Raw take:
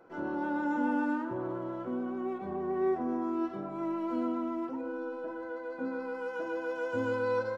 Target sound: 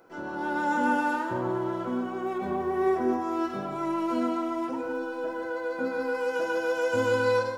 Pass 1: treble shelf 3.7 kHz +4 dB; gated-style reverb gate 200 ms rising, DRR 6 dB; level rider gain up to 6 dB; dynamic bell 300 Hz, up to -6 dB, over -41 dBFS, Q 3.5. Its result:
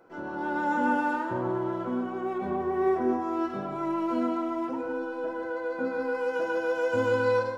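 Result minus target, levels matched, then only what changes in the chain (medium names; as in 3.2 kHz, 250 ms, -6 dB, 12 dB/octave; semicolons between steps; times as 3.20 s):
8 kHz band -7.5 dB
change: treble shelf 3.7 kHz +14 dB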